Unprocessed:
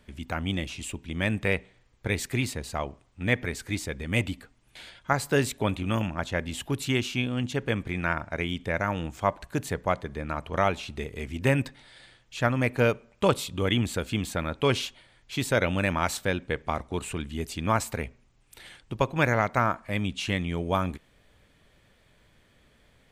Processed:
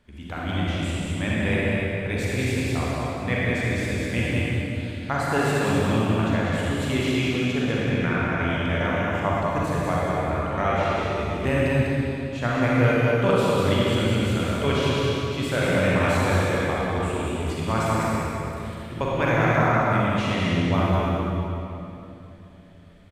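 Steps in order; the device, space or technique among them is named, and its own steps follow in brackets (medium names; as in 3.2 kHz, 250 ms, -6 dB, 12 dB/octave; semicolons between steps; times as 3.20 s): delay 198 ms -4 dB; swimming-pool hall (reverberation RT60 3.1 s, pre-delay 35 ms, DRR -6 dB; treble shelf 5.6 kHz -6.5 dB); trim -3.5 dB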